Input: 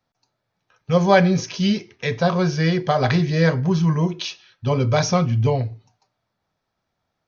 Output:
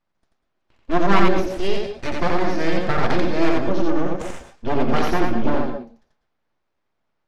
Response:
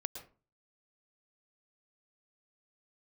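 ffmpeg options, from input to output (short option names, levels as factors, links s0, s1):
-filter_complex "[0:a]aeval=exprs='abs(val(0))':c=same,aemphasis=mode=reproduction:type=75fm,asplit=2[s0][s1];[1:a]atrim=start_sample=2205,afade=t=out:st=0.19:d=0.01,atrim=end_sample=8820,adelay=87[s2];[s1][s2]afir=irnorm=-1:irlink=0,volume=0.944[s3];[s0][s3]amix=inputs=2:normalize=0"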